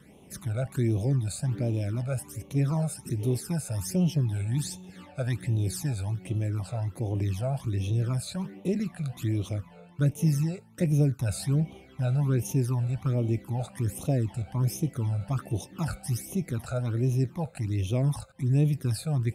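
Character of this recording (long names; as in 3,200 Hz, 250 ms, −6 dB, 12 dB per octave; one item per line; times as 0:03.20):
phaser sweep stages 12, 1.3 Hz, lowest notch 310–1,600 Hz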